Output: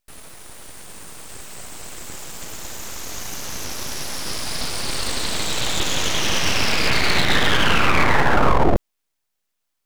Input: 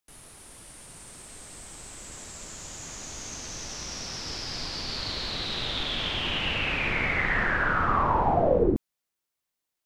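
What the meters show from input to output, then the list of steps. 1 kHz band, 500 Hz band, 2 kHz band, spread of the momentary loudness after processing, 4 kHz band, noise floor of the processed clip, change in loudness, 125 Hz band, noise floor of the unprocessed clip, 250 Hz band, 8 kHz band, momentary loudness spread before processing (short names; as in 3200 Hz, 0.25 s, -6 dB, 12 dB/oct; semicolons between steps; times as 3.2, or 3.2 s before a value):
+5.5 dB, +3.5 dB, +6.5 dB, 20 LU, +8.0 dB, -76 dBFS, +6.5 dB, +7.0 dB, -85 dBFS, +6.5 dB, +10.5 dB, 20 LU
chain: high shelf 4700 Hz -5 dB; full-wave rectifier; maximiser +15.5 dB; gain -3.5 dB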